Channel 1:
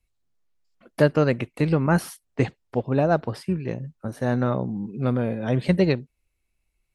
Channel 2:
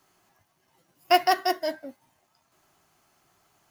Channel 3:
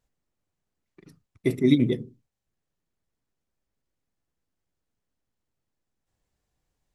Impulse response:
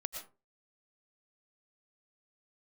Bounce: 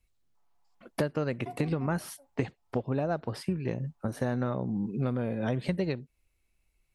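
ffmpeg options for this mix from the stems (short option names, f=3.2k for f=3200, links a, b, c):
-filter_complex "[0:a]volume=1dB[a];[1:a]acompressor=threshold=-23dB:ratio=6,bandpass=f=880:t=q:w=4.1:csg=0,aecho=1:1:7:0.95,adelay=350,volume=-11dB[b];[2:a]volume=-17dB[c];[a][b][c]amix=inputs=3:normalize=0,acompressor=threshold=-26dB:ratio=10"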